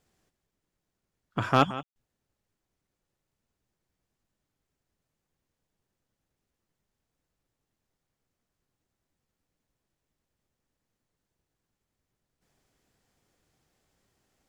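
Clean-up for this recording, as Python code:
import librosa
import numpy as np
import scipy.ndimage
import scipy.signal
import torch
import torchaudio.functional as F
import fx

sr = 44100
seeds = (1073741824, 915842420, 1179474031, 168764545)

y = fx.fix_declip(x, sr, threshold_db=-7.5)
y = fx.fix_ambience(y, sr, seeds[0], print_start_s=2.82, print_end_s=3.32, start_s=1.83, end_s=1.96)
y = fx.fix_echo_inverse(y, sr, delay_ms=175, level_db=-15.5)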